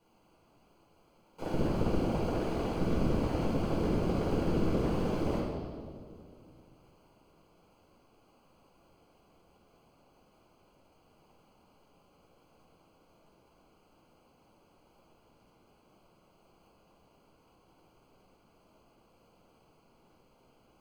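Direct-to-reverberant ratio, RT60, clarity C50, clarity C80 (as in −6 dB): −8.0 dB, 2.3 s, −2.0 dB, 1.0 dB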